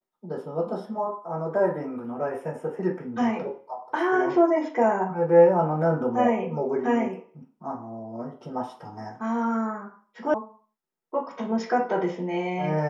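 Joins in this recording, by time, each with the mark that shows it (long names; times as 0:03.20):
0:10.34: cut off before it has died away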